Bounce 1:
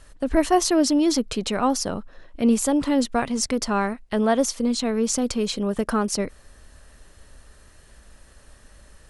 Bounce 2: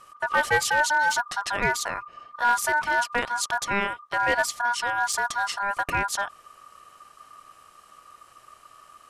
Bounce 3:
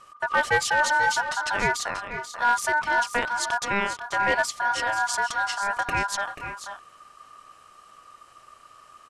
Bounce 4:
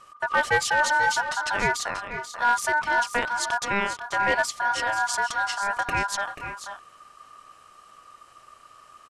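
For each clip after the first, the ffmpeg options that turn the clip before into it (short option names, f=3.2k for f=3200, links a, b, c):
-af "aeval=exprs='val(0)*sin(2*PI*1200*n/s)':c=same,aeval=exprs='clip(val(0),-1,0.168)':c=same"
-filter_complex "[0:a]lowpass=9k,asplit=2[a][b];[b]aecho=0:1:486|512:0.282|0.178[c];[a][c]amix=inputs=2:normalize=0"
-af "aresample=32000,aresample=44100"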